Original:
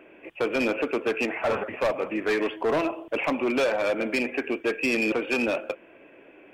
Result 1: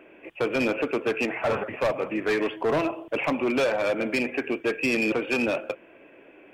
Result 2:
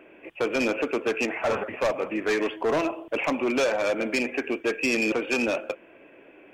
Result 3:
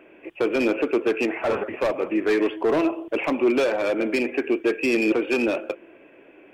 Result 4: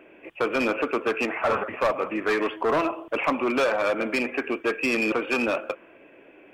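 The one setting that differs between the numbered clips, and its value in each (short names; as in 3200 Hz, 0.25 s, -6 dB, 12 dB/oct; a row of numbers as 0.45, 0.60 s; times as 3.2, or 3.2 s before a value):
dynamic EQ, frequency: 130, 6400, 350, 1200 Hz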